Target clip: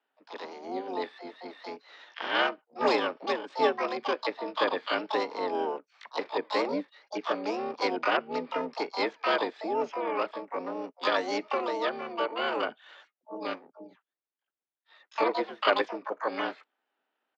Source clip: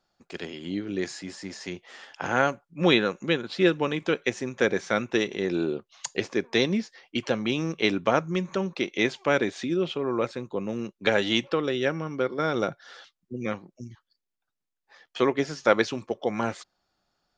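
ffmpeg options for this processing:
-filter_complex "[0:a]highpass=f=200:t=q:w=0.5412,highpass=f=200:t=q:w=1.307,lowpass=f=2.3k:t=q:w=0.5176,lowpass=f=2.3k:t=q:w=0.7071,lowpass=f=2.3k:t=q:w=1.932,afreqshift=68,asplit=4[a][b][c][d];[b]asetrate=29433,aresample=44100,atempo=1.49831,volume=-14dB[e];[c]asetrate=66075,aresample=44100,atempo=0.66742,volume=-11dB[f];[d]asetrate=88200,aresample=44100,atempo=0.5,volume=-2dB[g];[a][e][f][g]amix=inputs=4:normalize=0,volume=-5.5dB"

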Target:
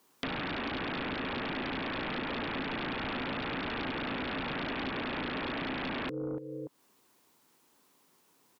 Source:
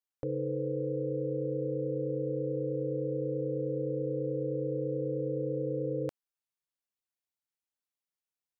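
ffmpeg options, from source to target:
-filter_complex "[0:a]highpass=f=73:p=1,asplit=2[a][b];[b]adelay=289,lowpass=f=820:p=1,volume=-21dB,asplit=2[c][d];[d]adelay=289,lowpass=f=820:p=1,volume=0.29[e];[a][c][e]amix=inputs=3:normalize=0,alimiter=level_in=8dB:limit=-24dB:level=0:latency=1:release=171,volume=-8dB,equalizer=f=160:t=o:w=0.67:g=6,equalizer=f=400:t=o:w=0.67:g=9,equalizer=f=1k:t=o:w=0.67:g=10,aeval=exprs='0.0631*sin(PI/2*7.94*val(0)/0.0631)':c=same,equalizer=f=260:w=1.8:g=10.5,acompressor=threshold=-41dB:ratio=3,volume=2.5dB"

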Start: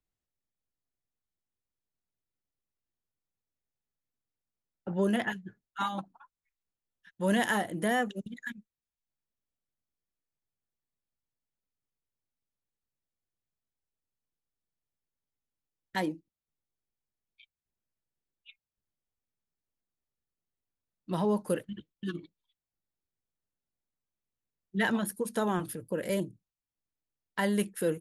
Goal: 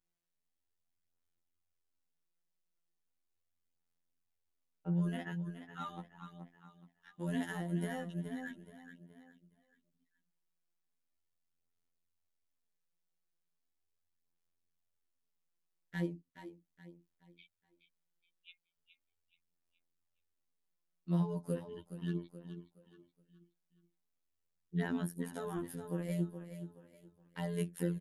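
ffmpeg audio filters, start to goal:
-filter_complex "[0:a]acrossover=split=280[a][b];[b]acompressor=threshold=-51dB:ratio=2[c];[a][c]amix=inputs=2:normalize=0,asplit=2[d][e];[e]aecho=0:1:422|844|1266|1688:0.299|0.113|0.0431|0.0164[f];[d][f]amix=inputs=2:normalize=0,afftfilt=real='hypot(re,im)*cos(PI*b)':imag='0':win_size=2048:overlap=0.75,flanger=delay=5.4:depth=6.2:regen=3:speed=0.38:shape=sinusoidal,volume=5dB"

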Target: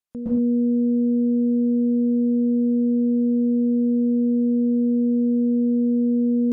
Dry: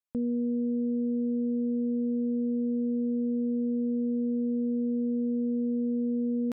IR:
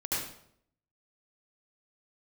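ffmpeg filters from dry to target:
-filter_complex "[0:a]alimiter=level_in=4dB:limit=-24dB:level=0:latency=1,volume=-4dB[a];[1:a]atrim=start_sample=2205,atrim=end_sample=6615,asetrate=27342,aresample=44100[b];[a][b]afir=irnorm=-1:irlink=0,volume=4dB"

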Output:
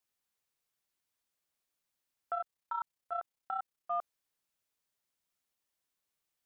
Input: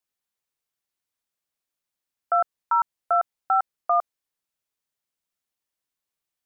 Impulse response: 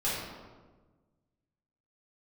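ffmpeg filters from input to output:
-filter_complex "[0:a]acontrast=42,alimiter=limit=-21dB:level=0:latency=1:release=16,asplit=3[a][b][c];[a]afade=t=out:st=2.34:d=0.02[d];[b]tremolo=f=32:d=0.667,afade=t=in:st=2.34:d=0.02,afade=t=out:st=3.9:d=0.02[e];[c]afade=t=in:st=3.9:d=0.02[f];[d][e][f]amix=inputs=3:normalize=0,volume=-5.5dB"

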